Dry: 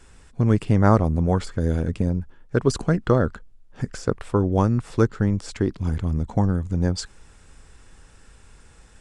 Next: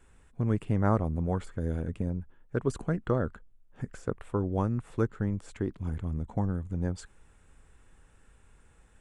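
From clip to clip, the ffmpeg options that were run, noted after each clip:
ffmpeg -i in.wav -af "equalizer=frequency=5000:width=1.7:gain=-12,volume=-9dB" out.wav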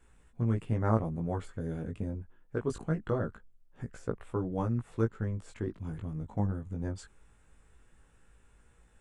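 ffmpeg -i in.wav -af "flanger=delay=17:depth=2.4:speed=0.23" out.wav

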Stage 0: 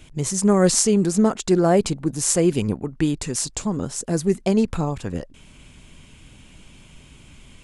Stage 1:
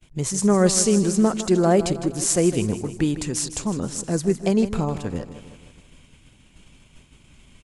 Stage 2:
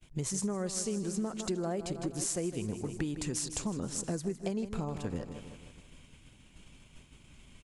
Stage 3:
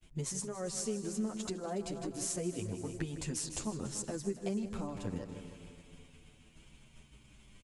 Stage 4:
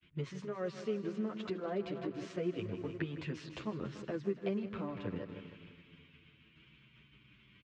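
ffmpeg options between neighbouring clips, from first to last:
ffmpeg -i in.wav -af "aecho=1:1:157|314|471|628|785|942:0.237|0.133|0.0744|0.0416|0.0233|0.0131,agate=range=-33dB:threshold=-40dB:ratio=3:detection=peak,volume=-1dB" out.wav
ffmpeg -i in.wav -af "acompressor=threshold=-26dB:ratio=10,volume=-4.5dB" out.wav
ffmpeg -i in.wav -filter_complex "[0:a]aecho=1:1:284|568|852|1136|1420:0.168|0.0907|0.049|0.0264|0.0143,asplit=2[link_01][link_02];[link_02]adelay=8.6,afreqshift=-0.35[link_03];[link_01][link_03]amix=inputs=2:normalize=1" out.wav
ffmpeg -i in.wav -filter_complex "[0:a]acrossover=split=380|1000[link_01][link_02][link_03];[link_02]aeval=exprs='sgn(val(0))*max(abs(val(0))-0.00106,0)':channel_layout=same[link_04];[link_01][link_04][link_03]amix=inputs=3:normalize=0,highpass=140,equalizer=frequency=170:width_type=q:width=4:gain=-3,equalizer=frequency=240:width_type=q:width=4:gain=-7,equalizer=frequency=800:width_type=q:width=4:gain=-8,lowpass=frequency=3200:width=0.5412,lowpass=frequency=3200:width=1.3066,volume=3.5dB" out.wav

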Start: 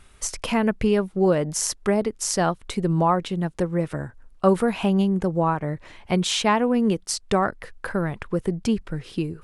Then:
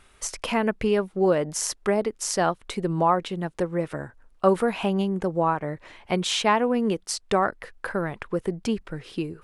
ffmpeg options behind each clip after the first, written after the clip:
ffmpeg -i in.wav -af "bass=frequency=250:gain=-7,treble=frequency=4000:gain=-3" out.wav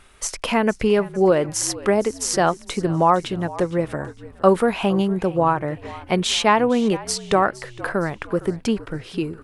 ffmpeg -i in.wav -filter_complex "[0:a]asplit=5[link_01][link_02][link_03][link_04][link_05];[link_02]adelay=462,afreqshift=-55,volume=-18dB[link_06];[link_03]adelay=924,afreqshift=-110,volume=-25.1dB[link_07];[link_04]adelay=1386,afreqshift=-165,volume=-32.3dB[link_08];[link_05]adelay=1848,afreqshift=-220,volume=-39.4dB[link_09];[link_01][link_06][link_07][link_08][link_09]amix=inputs=5:normalize=0,volume=4.5dB" out.wav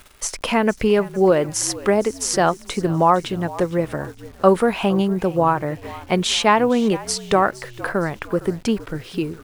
ffmpeg -i in.wav -af "acrusher=bits=9:dc=4:mix=0:aa=0.000001,volume=1dB" out.wav

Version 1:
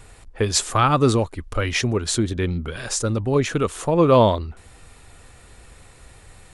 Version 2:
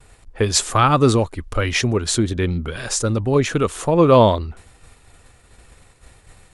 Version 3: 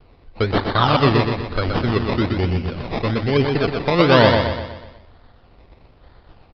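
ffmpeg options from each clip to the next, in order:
ffmpeg -i in.wav -af "agate=range=-33dB:threshold=-40dB:ratio=3:detection=peak,volume=2.5dB" out.wav
ffmpeg -i in.wav -filter_complex "[0:a]acrusher=samples=23:mix=1:aa=0.000001:lfo=1:lforange=13.8:lforate=1.1,asplit=2[link_01][link_02];[link_02]aecho=0:1:123|246|369|492|615|738:0.562|0.27|0.13|0.0622|0.0299|0.0143[link_03];[link_01][link_03]amix=inputs=2:normalize=0,aresample=11025,aresample=44100,volume=-1.5dB" out.wav

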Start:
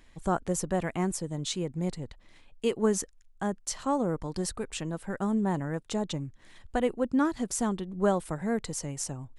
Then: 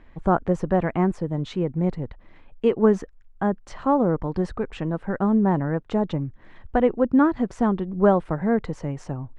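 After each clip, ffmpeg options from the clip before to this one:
ffmpeg -i in.wav -af "lowpass=1700,volume=8dB" out.wav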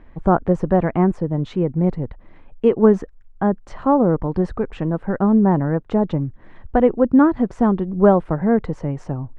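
ffmpeg -i in.wav -af "highshelf=frequency=2100:gain=-10,volume=5dB" out.wav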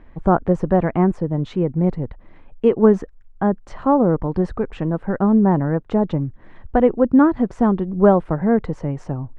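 ffmpeg -i in.wav -af anull out.wav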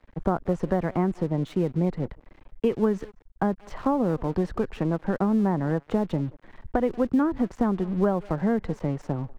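ffmpeg -i in.wav -filter_complex "[0:a]asplit=2[link_01][link_02];[link_02]adelay=180,highpass=300,lowpass=3400,asoftclip=type=hard:threshold=-10dB,volume=-23dB[link_03];[link_01][link_03]amix=inputs=2:normalize=0,aeval=exprs='sgn(val(0))*max(abs(val(0))-0.00708,0)':channel_layout=same,acrossover=split=180|1600[link_04][link_05][link_06];[link_04]acompressor=threshold=-32dB:ratio=4[link_07];[link_05]acompressor=threshold=-23dB:ratio=4[link_08];[link_06]acompressor=threshold=-42dB:ratio=4[link_09];[link_07][link_08][link_09]amix=inputs=3:normalize=0" out.wav

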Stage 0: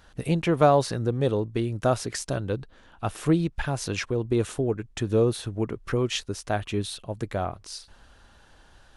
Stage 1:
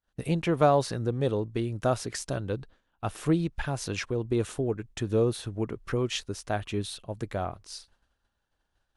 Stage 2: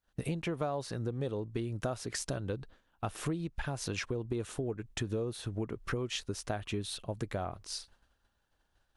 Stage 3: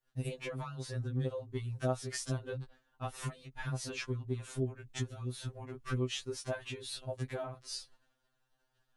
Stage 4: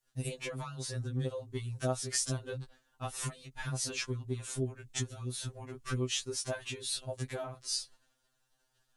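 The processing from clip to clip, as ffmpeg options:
ffmpeg -i in.wav -af "agate=range=-33dB:threshold=-40dB:ratio=3:detection=peak,volume=-3dB" out.wav
ffmpeg -i in.wav -af "acompressor=threshold=-34dB:ratio=6,volume=2dB" out.wav
ffmpeg -i in.wav -af "afftfilt=real='re*2.45*eq(mod(b,6),0)':imag='im*2.45*eq(mod(b,6),0)':win_size=2048:overlap=0.75" out.wav
ffmpeg -i in.wav -af "equalizer=frequency=8000:width_type=o:width=1.9:gain=10" out.wav

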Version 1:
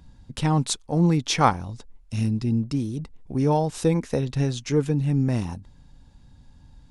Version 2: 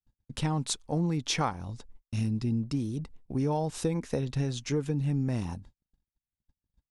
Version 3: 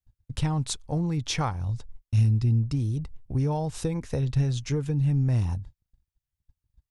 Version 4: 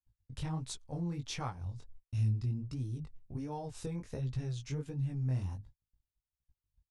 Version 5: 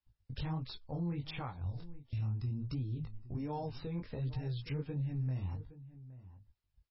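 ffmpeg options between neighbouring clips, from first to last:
ffmpeg -i in.wav -af "agate=range=-47dB:threshold=-43dB:ratio=16:detection=peak,acompressor=threshold=-21dB:ratio=6,volume=-3.5dB" out.wav
ffmpeg -i in.wav -af "lowshelf=frequency=150:width_type=q:width=1.5:gain=9" out.wav
ffmpeg -i in.wav -af "flanger=delay=15.5:depth=7.9:speed=1.4,volume=-8dB" out.wav
ffmpeg -i in.wav -filter_complex "[0:a]alimiter=level_in=10dB:limit=-24dB:level=0:latency=1:release=229,volume=-10dB,asplit=2[link_01][link_02];[link_02]adelay=816.3,volume=-16dB,highshelf=frequency=4000:gain=-18.4[link_03];[link_01][link_03]amix=inputs=2:normalize=0,volume=4dB" -ar 16000 -c:a libmp3lame -b:a 16k out.mp3

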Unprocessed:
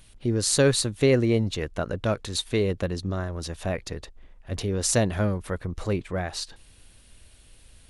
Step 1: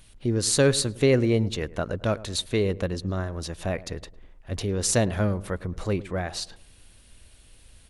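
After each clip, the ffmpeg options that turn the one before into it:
ffmpeg -i in.wav -filter_complex "[0:a]asplit=2[link_01][link_02];[link_02]adelay=106,lowpass=frequency=1200:poles=1,volume=-17.5dB,asplit=2[link_03][link_04];[link_04]adelay=106,lowpass=frequency=1200:poles=1,volume=0.45,asplit=2[link_05][link_06];[link_06]adelay=106,lowpass=frequency=1200:poles=1,volume=0.45,asplit=2[link_07][link_08];[link_08]adelay=106,lowpass=frequency=1200:poles=1,volume=0.45[link_09];[link_01][link_03][link_05][link_07][link_09]amix=inputs=5:normalize=0" out.wav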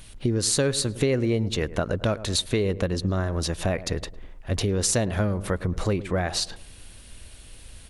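ffmpeg -i in.wav -af "acompressor=threshold=-29dB:ratio=4,volume=7.5dB" out.wav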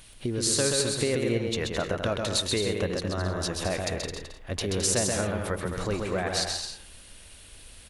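ffmpeg -i in.wav -filter_complex "[0:a]lowshelf=frequency=290:gain=-7,asplit=2[link_01][link_02];[link_02]aecho=0:1:130|214.5|269.4|305.1|328.3:0.631|0.398|0.251|0.158|0.1[link_03];[link_01][link_03]amix=inputs=2:normalize=0,volume=-2dB" out.wav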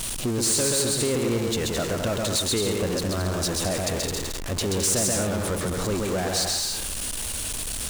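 ffmpeg -i in.wav -af "aeval=exprs='val(0)+0.5*0.0562*sgn(val(0))':channel_layout=same,equalizer=frequency=250:width_type=o:width=1:gain=3,equalizer=frequency=2000:width_type=o:width=1:gain=-3,equalizer=frequency=8000:width_type=o:width=1:gain=6,volume=17.5dB,asoftclip=hard,volume=-17.5dB,volume=-2dB" out.wav

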